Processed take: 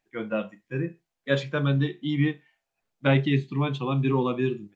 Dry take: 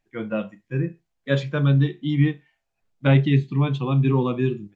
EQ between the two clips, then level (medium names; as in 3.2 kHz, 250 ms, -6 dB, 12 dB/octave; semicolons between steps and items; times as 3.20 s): bass shelf 150 Hz -12 dB; 0.0 dB